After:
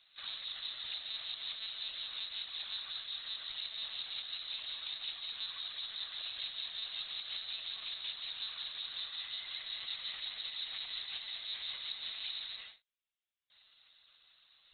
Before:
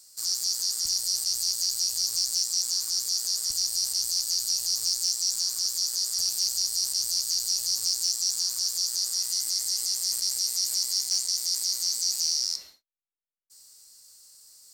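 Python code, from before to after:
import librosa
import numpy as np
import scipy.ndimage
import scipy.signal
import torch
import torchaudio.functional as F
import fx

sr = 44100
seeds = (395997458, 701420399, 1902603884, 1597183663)

y = np.diff(x, prepend=0.0)
y = fx.lpc_monotone(y, sr, seeds[0], pitch_hz=220.0, order=16)
y = F.gain(torch.from_numpy(y), 16.5).numpy()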